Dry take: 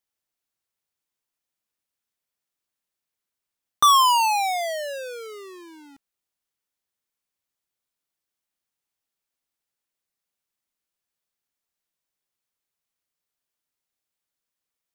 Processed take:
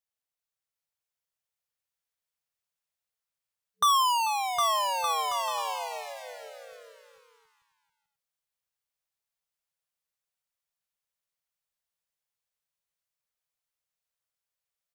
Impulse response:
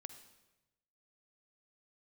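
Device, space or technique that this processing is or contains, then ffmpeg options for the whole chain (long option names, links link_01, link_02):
ducked delay: -filter_complex "[0:a]asplit=3[link_01][link_02][link_03];[link_02]adelay=440,volume=-7dB[link_04];[link_03]apad=whole_len=678643[link_05];[link_04][link_05]sidechaincompress=threshold=-30dB:ratio=8:attack=16:release=933[link_06];[link_01][link_06]amix=inputs=2:normalize=0,afftfilt=real='re*(1-between(b*sr/4096,190,440))':imag='im*(1-between(b*sr/4096,190,440))':win_size=4096:overlap=0.75,aecho=1:1:760|1216|1490|1654|1752:0.631|0.398|0.251|0.158|0.1,volume=-7dB"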